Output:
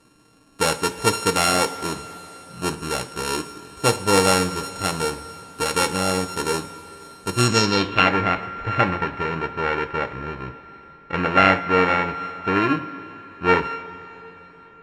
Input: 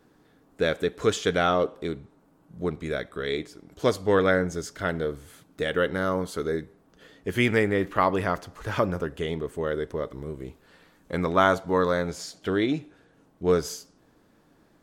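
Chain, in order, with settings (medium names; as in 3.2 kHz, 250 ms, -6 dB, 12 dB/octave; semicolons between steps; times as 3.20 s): sorted samples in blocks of 32 samples; two-slope reverb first 0.25 s, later 3.9 s, from -18 dB, DRR 6.5 dB; low-pass sweep 9.8 kHz -> 2.1 kHz, 7.36–8.14 s; trim +2.5 dB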